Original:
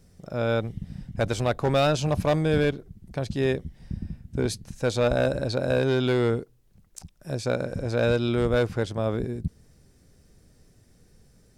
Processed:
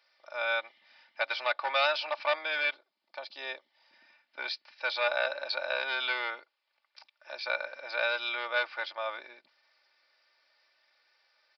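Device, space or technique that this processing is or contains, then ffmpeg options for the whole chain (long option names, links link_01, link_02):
musical greeting card: -filter_complex "[0:a]asettb=1/sr,asplit=3[link_01][link_02][link_03];[link_01]atrim=end=2.744[link_04];[link_02]atrim=start=2.74:end=3.93,asetpts=PTS-STARTPTS,afade=type=in:duration=0.004:curve=qsin,afade=type=out:start_time=1.186:duration=0.004:curve=qsin,equalizer=frequency=2000:width_type=o:width=1.5:gain=-8[link_05];[link_03]atrim=start=3.926[link_06];[link_04][link_05]acrossfade=duration=0.004:curve1=hsin:curve2=qsin[link_07];[link_07][link_06]acrossfade=duration=0.004:curve1=qsin:curve2=hsin,aecho=1:1:3.4:0.68,aresample=11025,aresample=44100,highpass=frequency=810:width=0.5412,highpass=frequency=810:width=1.3066,equalizer=frequency=2300:width_type=o:width=0.25:gain=6"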